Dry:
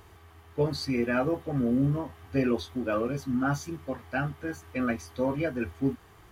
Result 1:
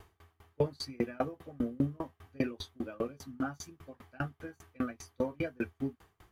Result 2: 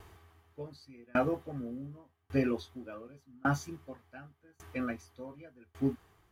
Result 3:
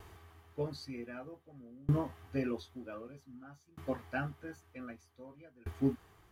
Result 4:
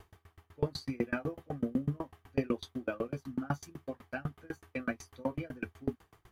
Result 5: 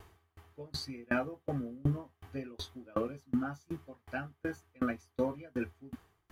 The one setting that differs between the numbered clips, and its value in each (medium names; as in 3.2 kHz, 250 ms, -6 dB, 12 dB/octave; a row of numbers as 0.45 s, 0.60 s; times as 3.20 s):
sawtooth tremolo in dB, rate: 5 Hz, 0.87 Hz, 0.53 Hz, 8 Hz, 2.7 Hz